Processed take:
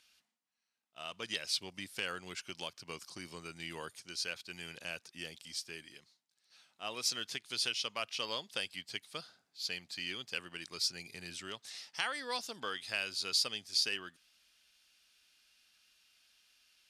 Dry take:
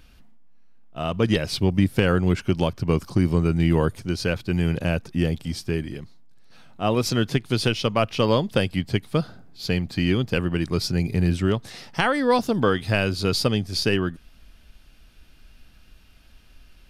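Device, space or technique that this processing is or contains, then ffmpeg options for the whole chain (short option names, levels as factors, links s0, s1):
piezo pickup straight into a mixer: -af "lowpass=7200,aderivative"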